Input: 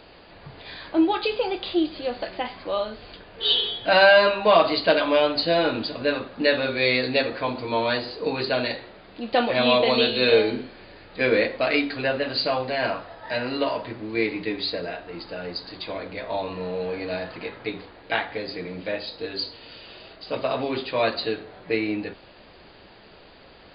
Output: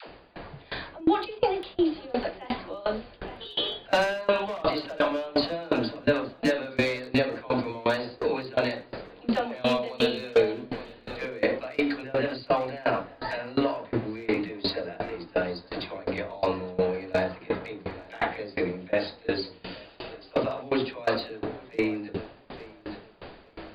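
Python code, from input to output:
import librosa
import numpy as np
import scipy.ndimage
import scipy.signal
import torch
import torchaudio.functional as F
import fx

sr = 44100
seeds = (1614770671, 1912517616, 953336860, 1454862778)

p1 = fx.over_compress(x, sr, threshold_db=-30.0, ratio=-1.0)
p2 = x + F.gain(torch.from_numpy(p1), 3.0).numpy()
p3 = 10.0 ** (-10.5 / 20.0) * (np.abs((p2 / 10.0 ** (-10.5 / 20.0) + 3.0) % 4.0 - 2.0) - 1.0)
p4 = fx.high_shelf(p3, sr, hz=3300.0, db=-11.0)
p5 = fx.dispersion(p4, sr, late='lows', ms=82.0, hz=400.0)
p6 = p5 + fx.echo_feedback(p5, sr, ms=867, feedback_pct=46, wet_db=-16.0, dry=0)
y = fx.tremolo_decay(p6, sr, direction='decaying', hz=2.8, depth_db=24)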